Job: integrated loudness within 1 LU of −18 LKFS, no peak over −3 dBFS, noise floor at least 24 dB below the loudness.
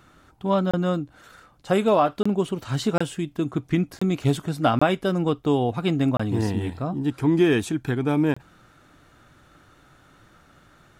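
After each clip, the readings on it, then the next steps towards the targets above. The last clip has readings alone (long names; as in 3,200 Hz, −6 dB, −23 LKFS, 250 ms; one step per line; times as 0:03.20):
number of dropouts 7; longest dropout 25 ms; integrated loudness −23.5 LKFS; sample peak −8.5 dBFS; target loudness −18.0 LKFS
→ repair the gap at 0:00.71/0:02.23/0:02.98/0:03.99/0:04.79/0:06.17/0:08.34, 25 ms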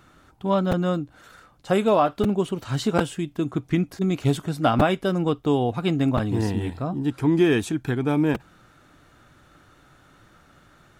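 number of dropouts 0; integrated loudness −23.5 LKFS; sample peak −5.0 dBFS; target loudness −18.0 LKFS
→ level +5.5 dB
brickwall limiter −3 dBFS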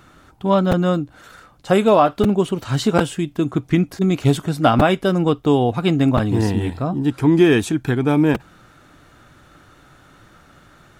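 integrated loudness −18.0 LKFS; sample peak −3.0 dBFS; background noise floor −51 dBFS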